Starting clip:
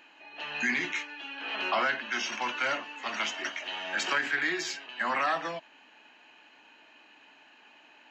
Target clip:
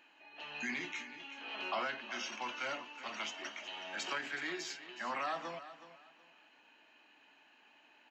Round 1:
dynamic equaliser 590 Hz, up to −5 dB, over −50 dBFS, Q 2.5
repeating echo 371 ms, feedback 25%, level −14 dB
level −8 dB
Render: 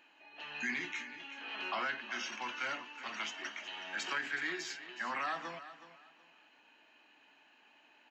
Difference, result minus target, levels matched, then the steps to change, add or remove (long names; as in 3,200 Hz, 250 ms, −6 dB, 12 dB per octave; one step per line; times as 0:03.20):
500 Hz band −4.5 dB
change: dynamic equaliser 1,700 Hz, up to −5 dB, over −50 dBFS, Q 2.5